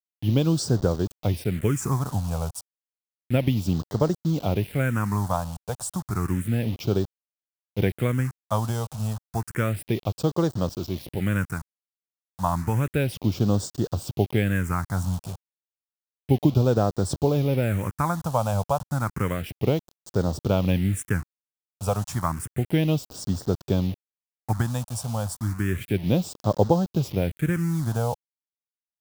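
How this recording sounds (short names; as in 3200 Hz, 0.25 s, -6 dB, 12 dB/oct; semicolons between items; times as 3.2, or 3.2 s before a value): a quantiser's noise floor 6-bit, dither none; phasing stages 4, 0.31 Hz, lowest notch 320–2300 Hz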